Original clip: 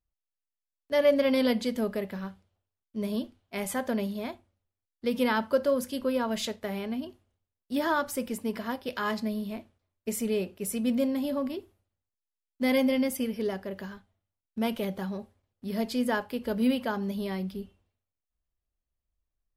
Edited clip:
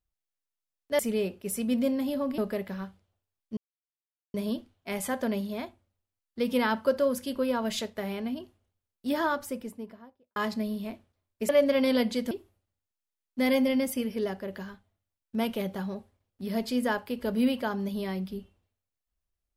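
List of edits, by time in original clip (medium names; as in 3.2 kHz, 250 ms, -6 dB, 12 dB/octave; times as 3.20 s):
0.99–1.81 s: swap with 10.15–11.54 s
3.00 s: insert silence 0.77 s
7.74–9.02 s: studio fade out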